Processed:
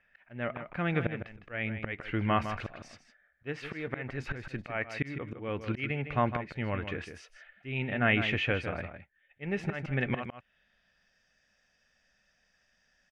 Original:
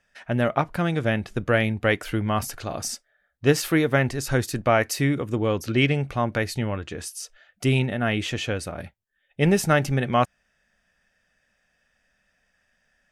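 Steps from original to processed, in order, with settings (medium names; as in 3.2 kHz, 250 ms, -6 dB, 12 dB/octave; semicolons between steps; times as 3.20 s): low-pass sweep 2.3 kHz -> 5.5 kHz, 10.04–11.19 s; slow attack 425 ms; echo from a far wall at 27 m, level -9 dB; trim -4 dB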